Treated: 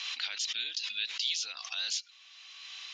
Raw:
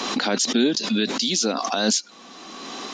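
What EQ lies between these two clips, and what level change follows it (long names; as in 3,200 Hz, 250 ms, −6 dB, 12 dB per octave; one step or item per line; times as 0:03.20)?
four-pole ladder band-pass 3,200 Hz, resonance 40%
+3.0 dB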